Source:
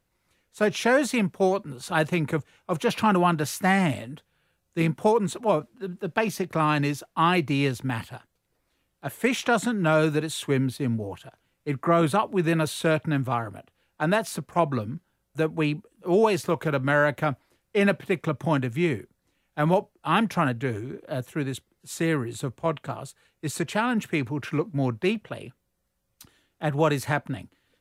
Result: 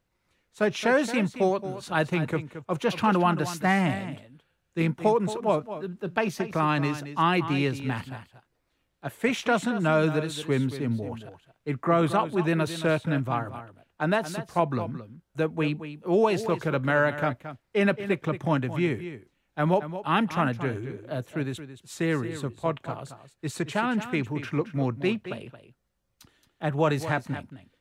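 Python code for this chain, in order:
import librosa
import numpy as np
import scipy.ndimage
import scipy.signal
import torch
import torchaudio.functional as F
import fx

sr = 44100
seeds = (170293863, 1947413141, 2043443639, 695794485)

y = fx.peak_eq(x, sr, hz=12000.0, db=-7.5, octaves=1.2)
y = y + 10.0 ** (-12.0 / 20.0) * np.pad(y, (int(223 * sr / 1000.0), 0))[:len(y)]
y = y * librosa.db_to_amplitude(-1.5)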